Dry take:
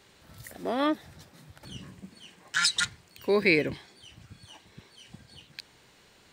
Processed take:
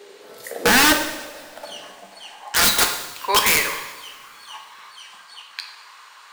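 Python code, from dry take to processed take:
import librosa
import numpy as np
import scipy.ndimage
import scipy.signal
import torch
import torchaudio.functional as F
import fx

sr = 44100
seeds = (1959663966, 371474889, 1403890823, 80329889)

y = fx.filter_sweep_highpass(x, sr, from_hz=420.0, to_hz=1100.0, start_s=0.13, end_s=3.57, q=5.2)
y = (np.mod(10.0 ** (19.0 / 20.0) * y + 1.0, 2.0) - 1.0) / 10.0 ** (19.0 / 20.0)
y = fx.rev_double_slope(y, sr, seeds[0], early_s=0.93, late_s=3.3, knee_db=-20, drr_db=3.5)
y = y * 10.0 ** (8.5 / 20.0)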